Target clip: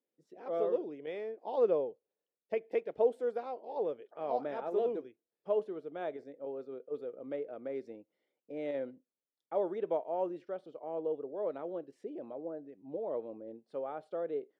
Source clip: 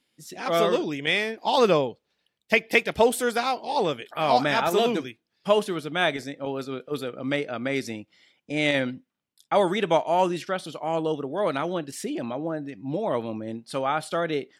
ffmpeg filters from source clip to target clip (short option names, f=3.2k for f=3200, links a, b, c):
-af "bandpass=f=470:t=q:w=2.5:csg=0,volume=-6.5dB"